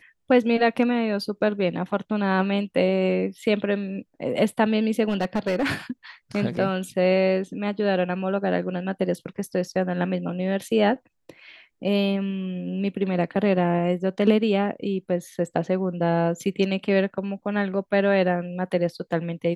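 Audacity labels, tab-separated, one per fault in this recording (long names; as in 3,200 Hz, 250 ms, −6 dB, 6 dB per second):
5.080000	5.700000	clipping −18.5 dBFS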